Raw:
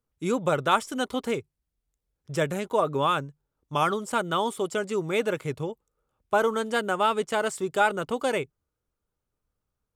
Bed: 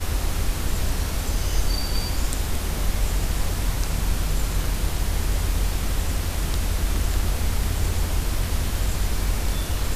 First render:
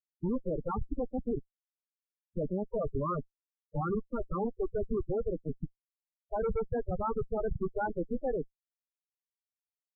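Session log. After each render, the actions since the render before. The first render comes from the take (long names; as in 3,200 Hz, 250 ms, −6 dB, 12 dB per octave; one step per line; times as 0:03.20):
comparator with hysteresis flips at −26 dBFS
spectral peaks only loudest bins 8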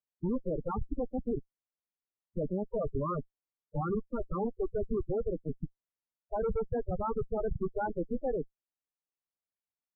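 low-pass filter 1,500 Hz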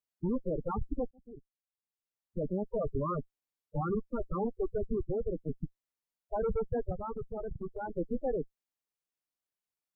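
0:01.11–0:02.55: fade in
0:04.78–0:05.36: Gaussian smoothing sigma 8.6 samples
0:06.92–0:07.96: downward compressor 2 to 1, threshold −39 dBFS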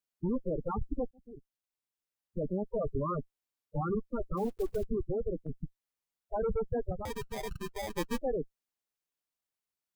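0:04.37–0:04.84: one scale factor per block 5 bits
0:05.46–0:06.34: dynamic equaliser 410 Hz, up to −8 dB, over −52 dBFS, Q 0.85
0:07.05–0:08.18: sample-rate reduction 1,400 Hz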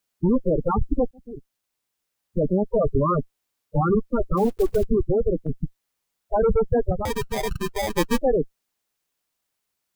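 level +12 dB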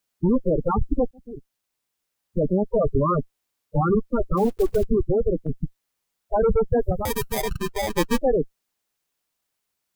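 0:06.79–0:07.42: parametric band 14,000 Hz +12 dB 1 octave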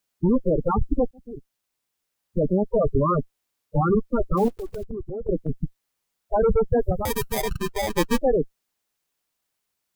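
0:04.48–0:05.29: downward compressor, threshold −29 dBFS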